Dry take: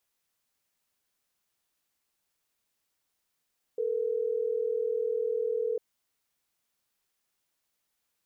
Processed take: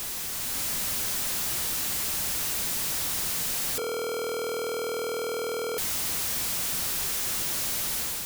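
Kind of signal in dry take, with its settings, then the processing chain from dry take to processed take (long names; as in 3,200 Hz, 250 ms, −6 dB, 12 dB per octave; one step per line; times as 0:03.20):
call progress tone ringback tone, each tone −29.5 dBFS
sign of each sample alone
bass and treble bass +6 dB, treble +3 dB
automatic gain control gain up to 4.5 dB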